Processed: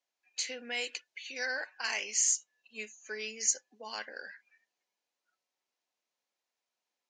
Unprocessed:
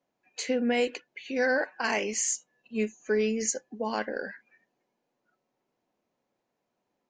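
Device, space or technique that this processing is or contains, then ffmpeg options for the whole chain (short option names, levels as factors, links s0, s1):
piezo pickup straight into a mixer: -filter_complex "[0:a]asettb=1/sr,asplit=3[s0][s1][s2];[s0]atrim=end=0.844[s3];[s1]atrim=start=0.84:end=1.46,asetpts=PTS-STARTPTS,afade=t=in:d=0.004:c=qsin,afade=t=out:st=0.616:d=0.004:c=qsin,highshelf=f=6400:g=7[s4];[s2]atrim=start=1.456[s5];[s3][s4]acrossfade=d=0.004:c1=hsin:c2=qsin[s6];[s6][s5]acrossfade=d=0.004:c1=qsin:c2=hsin,lowpass=5800,aderivative,volume=2.24"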